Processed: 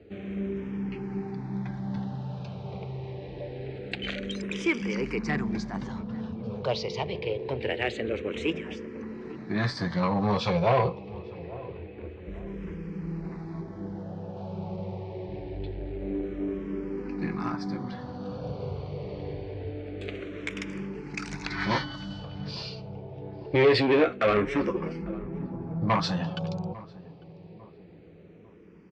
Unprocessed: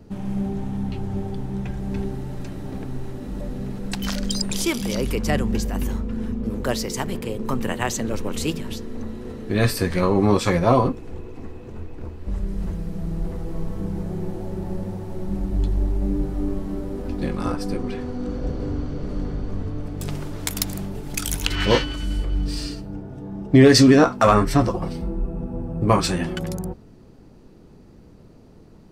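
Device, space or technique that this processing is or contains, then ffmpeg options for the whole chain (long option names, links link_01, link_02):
barber-pole phaser into a guitar amplifier: -filter_complex "[0:a]asplit=2[link_01][link_02];[link_02]afreqshift=-0.25[link_03];[link_01][link_03]amix=inputs=2:normalize=1,asoftclip=type=tanh:threshold=-16.5dB,highpass=110,equalizer=frequency=250:width_type=q:width=4:gain=-8,equalizer=frequency=440:width_type=q:width=4:gain=3,equalizer=frequency=1300:width_type=q:width=4:gain=-3,equalizer=frequency=2300:width_type=q:width=4:gain=6,lowpass=frequency=4500:width=0.5412,lowpass=frequency=4500:width=1.3066,asettb=1/sr,asplit=3[link_04][link_05][link_06];[link_04]atrim=end=13.614[link_07];[link_05]atrim=start=13.61:end=14.37,asetpts=PTS-STARTPTS,afade=type=in:duration=0.004:curve=qsin,afade=type=out:start_time=0.756:duration=0.004:curve=qsin,equalizer=frequency=160:width_type=o:width=0.67:gain=-9,equalizer=frequency=400:width_type=o:width=0.67:gain=9,equalizer=frequency=1000:width_type=o:width=0.67:gain=-6,equalizer=frequency=4000:width_type=o:width=0.67:gain=-7,equalizer=frequency=10000:width_type=o:width=0.67:gain=-4[link_08];[link_06]atrim=start=14.366[link_09];[link_07][link_08]acrossfade=duration=0.004:curve1=hsin:curve2=qsin[link_10];[link_10][link_09]acrossfade=duration=0.004:curve1=qsin:curve2=hsin,asplit=2[link_11][link_12];[link_12]adelay=849,lowpass=frequency=920:poles=1,volume=-17.5dB,asplit=2[link_13][link_14];[link_14]adelay=849,lowpass=frequency=920:poles=1,volume=0.47,asplit=2[link_15][link_16];[link_16]adelay=849,lowpass=frequency=920:poles=1,volume=0.47,asplit=2[link_17][link_18];[link_18]adelay=849,lowpass=frequency=920:poles=1,volume=0.47[link_19];[link_11][link_13][link_15][link_17][link_19]amix=inputs=5:normalize=0"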